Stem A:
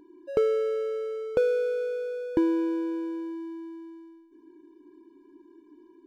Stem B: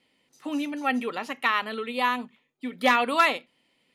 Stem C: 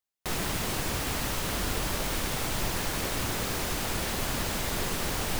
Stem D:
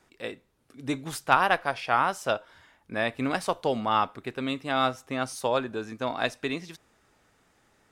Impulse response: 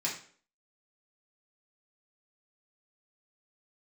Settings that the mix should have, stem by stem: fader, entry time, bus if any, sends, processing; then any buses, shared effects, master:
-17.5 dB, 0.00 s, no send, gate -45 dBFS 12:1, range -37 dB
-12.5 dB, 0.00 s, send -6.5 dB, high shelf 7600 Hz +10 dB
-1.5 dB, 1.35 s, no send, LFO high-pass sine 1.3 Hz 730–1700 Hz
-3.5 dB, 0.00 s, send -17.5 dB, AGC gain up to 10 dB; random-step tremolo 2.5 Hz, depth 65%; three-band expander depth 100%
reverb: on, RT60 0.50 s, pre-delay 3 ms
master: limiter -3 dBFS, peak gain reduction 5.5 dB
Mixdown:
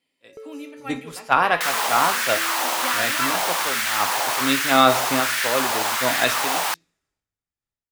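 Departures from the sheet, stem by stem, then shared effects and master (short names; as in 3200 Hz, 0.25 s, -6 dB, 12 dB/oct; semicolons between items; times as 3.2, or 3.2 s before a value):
stem C -1.5 dB -> +8.0 dB; stem D: send -17.5 dB -> -11.5 dB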